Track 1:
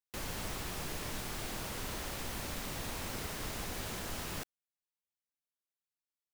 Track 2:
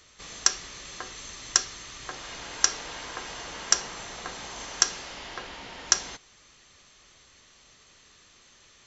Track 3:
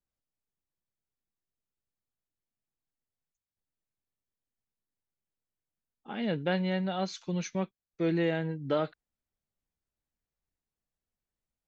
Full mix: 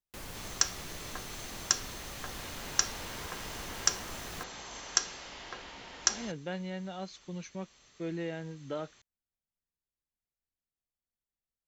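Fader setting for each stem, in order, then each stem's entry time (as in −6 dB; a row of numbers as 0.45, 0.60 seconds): −4.0, −5.5, −8.5 decibels; 0.00, 0.15, 0.00 seconds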